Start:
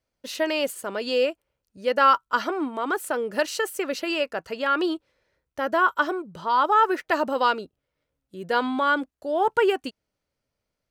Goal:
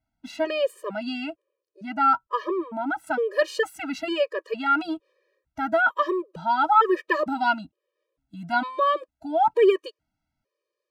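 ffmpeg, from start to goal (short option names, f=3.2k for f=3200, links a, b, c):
-af "asetnsamples=n=441:p=0,asendcmd='1.3 lowpass f 1000;3.07 lowpass f 2900',lowpass=f=1.7k:p=1,afftfilt=real='re*gt(sin(2*PI*1.1*pts/sr)*(1-2*mod(floor(b*sr/1024/320),2)),0)':imag='im*gt(sin(2*PI*1.1*pts/sr)*(1-2*mod(floor(b*sr/1024/320),2)),0)':win_size=1024:overlap=0.75,volume=4dB"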